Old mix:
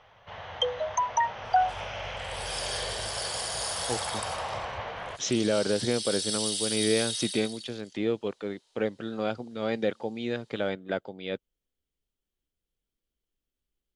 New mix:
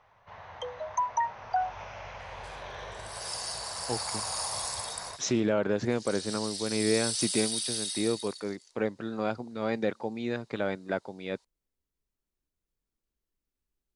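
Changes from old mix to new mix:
first sound -6.0 dB; second sound: entry +0.75 s; master: add thirty-one-band EQ 500 Hz -3 dB, 1000 Hz +5 dB, 3150 Hz -10 dB

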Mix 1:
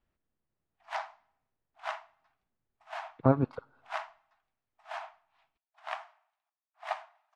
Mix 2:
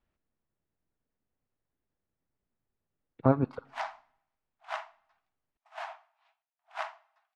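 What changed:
speech: send +9.0 dB; background: entry +2.85 s

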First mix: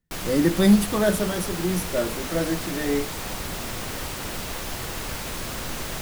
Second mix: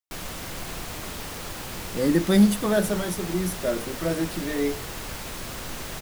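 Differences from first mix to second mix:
speech: entry +1.70 s; reverb: off

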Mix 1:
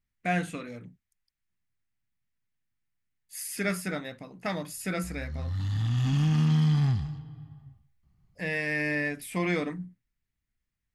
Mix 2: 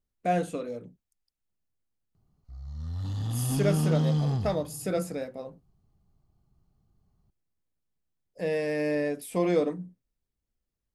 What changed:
background: entry -2.55 s; master: add ten-band EQ 125 Hz -4 dB, 500 Hz +10 dB, 2000 Hz -11 dB

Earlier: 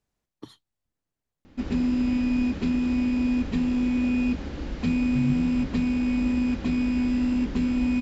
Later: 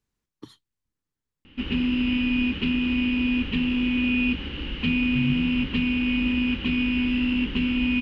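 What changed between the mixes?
background: add synth low-pass 2900 Hz, resonance Q 10; master: add bell 660 Hz -11.5 dB 0.49 oct

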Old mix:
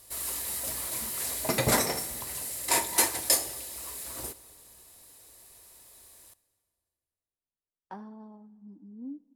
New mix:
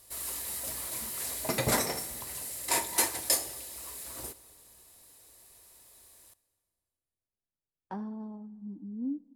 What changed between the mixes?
speech: add low shelf 340 Hz +10 dB; background -3.0 dB

